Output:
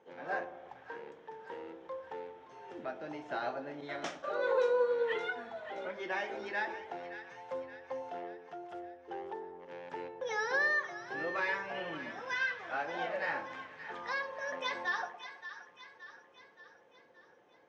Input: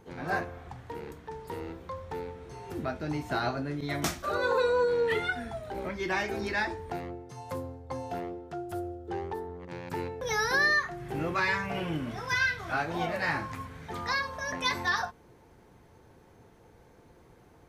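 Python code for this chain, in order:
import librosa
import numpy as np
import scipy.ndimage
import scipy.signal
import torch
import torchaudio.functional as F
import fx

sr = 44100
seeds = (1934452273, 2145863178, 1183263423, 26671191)

y = fx.cabinet(x, sr, low_hz=290.0, low_slope=12, high_hz=5800.0, hz=(540.0, 840.0, 1700.0, 3100.0, 4400.0), db=(9, 4, 4, 5, -7))
y = fx.echo_split(y, sr, split_hz=1000.0, low_ms=109, high_ms=573, feedback_pct=52, wet_db=-11.0)
y = F.gain(torch.from_numpy(y), -9.0).numpy()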